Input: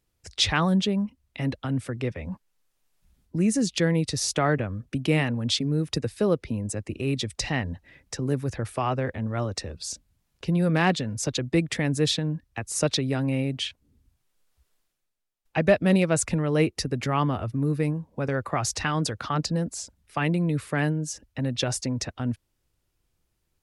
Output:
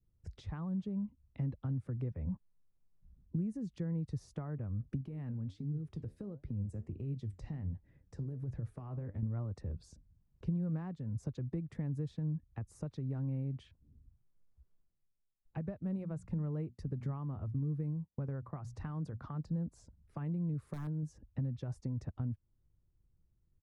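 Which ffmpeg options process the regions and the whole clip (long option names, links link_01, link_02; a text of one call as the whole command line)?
ffmpeg -i in.wav -filter_complex "[0:a]asettb=1/sr,asplit=3[link_01][link_02][link_03];[link_01]atrim=end=5.014[link_04];[link_02]atrim=start=5.01:end=9.23,asetpts=PTS-STARTPTS,afade=type=in:duration=0.004:curve=qsin,afade=type=out:start_time=4.216:duration=0.004:curve=qsin,acompressor=threshold=-29dB:ratio=10:attack=3.2:release=140:knee=1:detection=peak,flanger=delay=6.1:depth=8.4:regen=74:speed=1.4:shape=triangular[link_05];[link_03]atrim=start=9.226[link_06];[link_04][link_05]acrossfade=duration=0.004:curve1=hsin:curve2=qsin[link_07];[link_07][link_06]acrossfade=duration=0.004:curve1=qsin:curve2=hsin,asettb=1/sr,asplit=3[link_08][link_09][link_10];[link_08]atrim=end=15.964[link_11];[link_09]atrim=start=15.96:end=19.22,asetpts=PTS-STARTPTS,afade=type=in:duration=0.004:curve=qsin,afade=type=out:start_time=3.256:duration=0.004:curve=qsin,bandreject=frequency=60:width_type=h:width=6,bandreject=frequency=120:width_type=h:width=6,bandreject=frequency=180:width_type=h:width=6,bandreject=frequency=240:width_type=h:width=6,agate=range=-33dB:threshold=-35dB:ratio=3:release=100:detection=peak[link_12];[link_10]atrim=start=19.216[link_13];[link_11][link_12]acrossfade=duration=0.004:curve1=hsin:curve2=qsin[link_14];[link_14][link_13]acrossfade=duration=0.004:curve1=qsin:curve2=hsin,asettb=1/sr,asplit=3[link_15][link_16][link_17];[link_15]atrim=end=20.544[link_18];[link_16]atrim=start=20.54:end=21.03,asetpts=PTS-STARTPTS,afade=type=in:duration=0.004:curve=qsin,afade=type=out:start_time=0.486:duration=0.004:curve=qsin,bass=frequency=250:gain=-3,treble=frequency=4000:gain=6,aeval=exprs='(mod(7.08*val(0)+1,2)-1)/7.08':channel_layout=same[link_19];[link_17]atrim=start=21.026[link_20];[link_18][link_19]acrossfade=duration=0.004:curve1=hsin:curve2=qsin[link_21];[link_21][link_20]acrossfade=duration=0.004:curve1=qsin:curve2=hsin,adynamicequalizer=threshold=0.0112:dfrequency=1000:dqfactor=1.2:tfrequency=1000:tqfactor=1.2:attack=5:release=100:ratio=0.375:range=3:mode=boostabove:tftype=bell,acompressor=threshold=-33dB:ratio=6,firequalizer=gain_entry='entry(150,0);entry(260,-8);entry(700,-17);entry(1000,-17);entry(2700,-29)':delay=0.05:min_phase=1,volume=2.5dB" out.wav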